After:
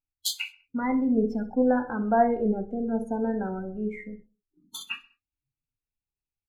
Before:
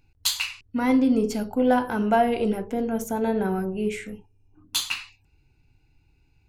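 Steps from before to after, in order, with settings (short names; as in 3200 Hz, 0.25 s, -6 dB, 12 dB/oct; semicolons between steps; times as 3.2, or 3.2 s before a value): spectral noise reduction 29 dB; 2.45–3.33 LPF 6400 Hz 12 dB/oct; 4.04–4.81 compressor 3:1, threshold -34 dBFS, peak gain reduction 8.5 dB; flange 0.56 Hz, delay 3.5 ms, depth 1.6 ms, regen +35%; feedback echo 65 ms, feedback 42%, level -18.5 dB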